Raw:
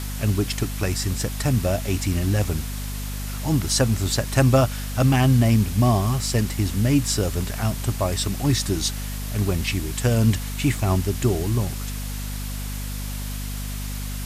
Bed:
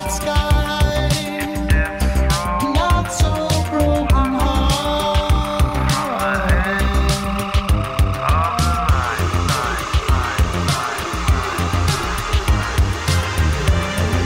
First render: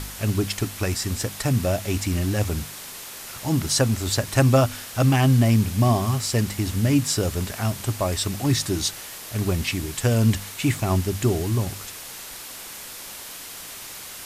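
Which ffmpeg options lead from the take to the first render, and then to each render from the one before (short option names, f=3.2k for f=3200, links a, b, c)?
-af "bandreject=f=50:t=h:w=4,bandreject=f=100:t=h:w=4,bandreject=f=150:t=h:w=4,bandreject=f=200:t=h:w=4,bandreject=f=250:t=h:w=4"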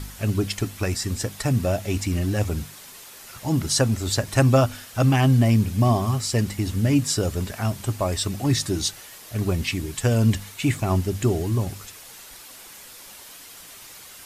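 -af "afftdn=nr=7:nf=-38"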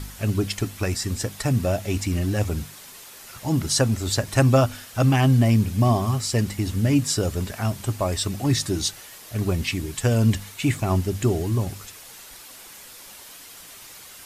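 -af anull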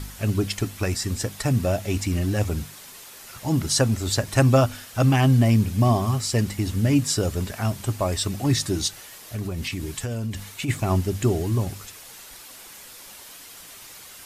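-filter_complex "[0:a]asplit=3[a][b][c];[a]afade=t=out:st=8.87:d=0.02[d];[b]acompressor=threshold=-25dB:ratio=6:attack=3.2:release=140:knee=1:detection=peak,afade=t=in:st=8.87:d=0.02,afade=t=out:st=10.68:d=0.02[e];[c]afade=t=in:st=10.68:d=0.02[f];[d][e][f]amix=inputs=3:normalize=0"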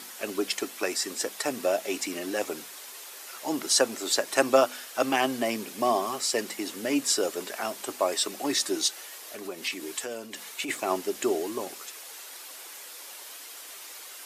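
-af "highpass=f=330:w=0.5412,highpass=f=330:w=1.3066"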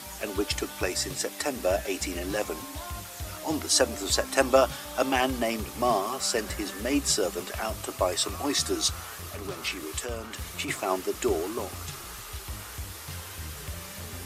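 -filter_complex "[1:a]volume=-23dB[a];[0:a][a]amix=inputs=2:normalize=0"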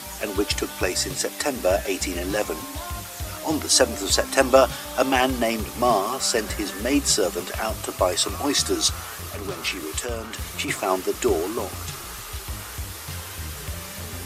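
-af "volume=5dB,alimiter=limit=-2dB:level=0:latency=1"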